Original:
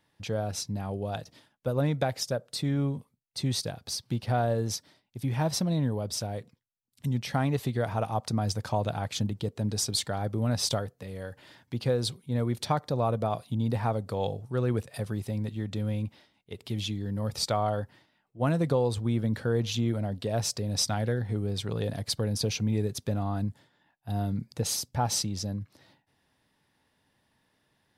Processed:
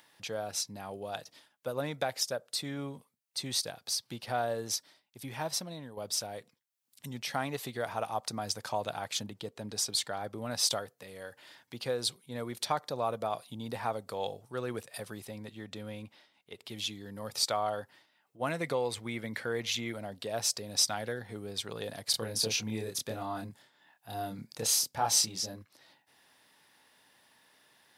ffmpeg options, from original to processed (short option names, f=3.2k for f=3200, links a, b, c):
-filter_complex "[0:a]asettb=1/sr,asplit=3[a][b][c];[a]atrim=end=9.234[d];[b]atrim=start=9.23:end=10.5,asetpts=PTS-STARTPTS,afade=t=in:d=0.004:c=qsin,afade=t=out:st=1.266:d=0.004:c=qsin,highshelf=f=4.7k:g=-5[e];[c]atrim=start=10.496[f];[d][e]acrossfade=d=0.004:c1=hsin:c2=qsin[g];[g][f]acrossfade=d=0.004:c1=qsin:c2=hsin,asettb=1/sr,asplit=3[h][i][j];[h]atrim=end=15.254[k];[i]atrim=start=15.25:end=16.72,asetpts=PTS-STARTPTS,afade=t=in:d=0.004:c=qsin,afade=t=out:st=1.466:d=0.004:c=qsin,highshelf=f=5.2k:g=-5.5[l];[j]atrim=start=16.716[m];[k][l]acrossfade=d=0.004:c1=hsin:c2=qsin[n];[n][m]acrossfade=d=0.004:c1=qsin:c2=hsin,asettb=1/sr,asplit=3[o][p][q];[o]atrim=end=18.494[r];[p]atrim=start=18.49:end=19.93,asetpts=PTS-STARTPTS,afade=t=in:d=0.004:c=qsin,afade=t=out:st=1.436:d=0.004:c=qsin,equalizer=f=2.1k:t=o:w=0.38:g=12[s];[q]atrim=start=19.926[t];[r][s]acrossfade=d=0.004:c1=hsin:c2=qsin[u];[u][t]acrossfade=d=0.004:c1=qsin:c2=hsin,asettb=1/sr,asplit=3[v][w][x];[v]atrim=end=22.114[y];[w]atrim=start=22.11:end=25.62,asetpts=PTS-STARTPTS,afade=t=in:d=0.004:c=qsin,afade=t=out:st=3.506:d=0.004:c=qsin,asplit=2[z][aa];[aa]adelay=27,volume=-2dB[ab];[z][ab]amix=inputs=2:normalize=0,atrim=end_sample=154791[ac];[x]atrim=start=25.616[ad];[y][ac]acrossfade=d=0.004:c1=hsin:c2=qsin[ae];[ae][ad]acrossfade=d=0.004:c1=qsin:c2=hsin,asplit=2[af][ag];[af]atrim=end=5.97,asetpts=PTS-STARTPTS,afade=t=out:st=5.21:d=0.76:silence=0.354813[ah];[ag]atrim=start=5.97,asetpts=PTS-STARTPTS,afade=t=in:d=0.004:c=hsin:silence=0.354813[ai];[ah][ai]concat=n=2:v=0:a=1,highpass=f=750:p=1,highshelf=f=7.8k:g=4,acompressor=mode=upward:threshold=-54dB:ratio=2.5"